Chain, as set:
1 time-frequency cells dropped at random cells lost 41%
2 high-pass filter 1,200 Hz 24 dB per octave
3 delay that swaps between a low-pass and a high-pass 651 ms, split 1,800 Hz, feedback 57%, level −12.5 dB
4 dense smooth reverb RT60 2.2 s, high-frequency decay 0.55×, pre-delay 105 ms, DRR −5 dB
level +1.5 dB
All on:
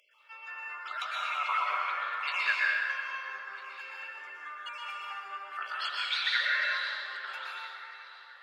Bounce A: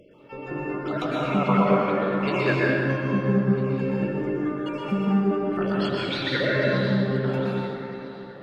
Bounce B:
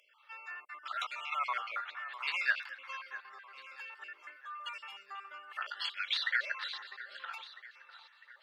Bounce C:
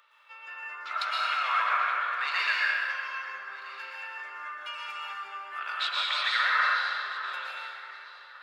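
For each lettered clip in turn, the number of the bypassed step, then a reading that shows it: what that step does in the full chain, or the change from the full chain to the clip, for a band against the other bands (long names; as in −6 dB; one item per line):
2, 500 Hz band +28.0 dB
4, change in crest factor +3.5 dB
1, 1 kHz band +2.0 dB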